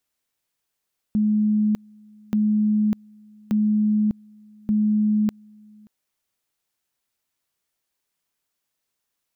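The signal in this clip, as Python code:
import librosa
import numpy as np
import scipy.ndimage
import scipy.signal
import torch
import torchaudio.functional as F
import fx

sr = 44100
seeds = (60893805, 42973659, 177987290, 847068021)

y = fx.two_level_tone(sr, hz=212.0, level_db=-16.5, drop_db=29.0, high_s=0.6, low_s=0.58, rounds=4)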